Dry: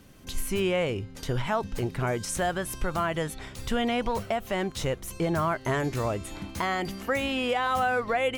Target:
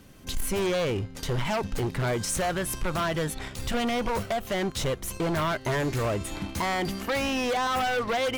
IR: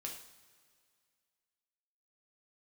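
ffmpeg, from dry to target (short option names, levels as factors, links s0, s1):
-filter_complex "[0:a]asplit=2[s0][s1];[s1]acrusher=bits=5:mix=0:aa=0.5,volume=0.447[s2];[s0][s2]amix=inputs=2:normalize=0,aeval=exprs='0.237*(cos(1*acos(clip(val(0)/0.237,-1,1)))-cos(1*PI/2))+0.0944*(cos(5*acos(clip(val(0)/0.237,-1,1)))-cos(5*PI/2))':c=same,volume=0.398"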